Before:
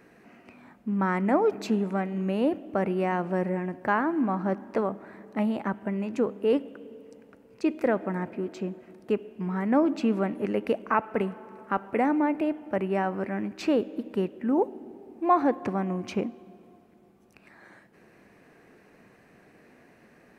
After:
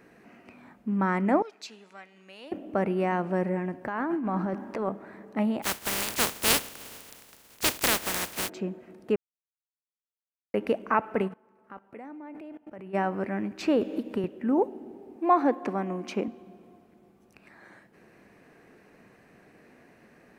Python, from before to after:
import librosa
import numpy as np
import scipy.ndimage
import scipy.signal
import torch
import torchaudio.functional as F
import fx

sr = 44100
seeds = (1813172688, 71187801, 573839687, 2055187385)

y = fx.bandpass_q(x, sr, hz=4900.0, q=1.1, at=(1.42, 2.52))
y = fx.over_compress(y, sr, threshold_db=-29.0, ratio=-1.0, at=(3.87, 4.89))
y = fx.spec_flatten(y, sr, power=0.17, at=(5.62, 8.48), fade=0.02)
y = fx.level_steps(y, sr, step_db=21, at=(11.27, 12.93), fade=0.02)
y = fx.band_squash(y, sr, depth_pct=100, at=(13.81, 14.24))
y = fx.highpass(y, sr, hz=200.0, slope=24, at=(15.16, 16.28))
y = fx.edit(y, sr, fx.silence(start_s=9.16, length_s=1.38), tone=tone)